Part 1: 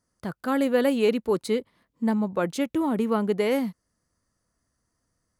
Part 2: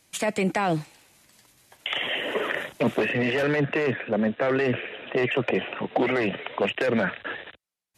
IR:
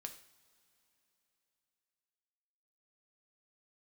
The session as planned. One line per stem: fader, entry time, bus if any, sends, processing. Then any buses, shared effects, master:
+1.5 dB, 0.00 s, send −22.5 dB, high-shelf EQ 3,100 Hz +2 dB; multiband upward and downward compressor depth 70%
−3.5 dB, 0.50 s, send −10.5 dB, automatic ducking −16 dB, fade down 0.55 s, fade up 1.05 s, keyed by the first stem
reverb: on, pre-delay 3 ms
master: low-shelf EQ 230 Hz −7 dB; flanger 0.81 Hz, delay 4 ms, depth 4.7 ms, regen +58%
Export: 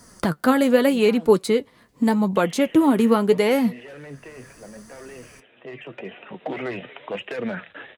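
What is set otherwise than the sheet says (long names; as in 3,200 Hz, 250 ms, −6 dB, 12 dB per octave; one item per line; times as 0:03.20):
stem 1 +1.5 dB → +9.5 dB
master: missing low-shelf EQ 230 Hz −7 dB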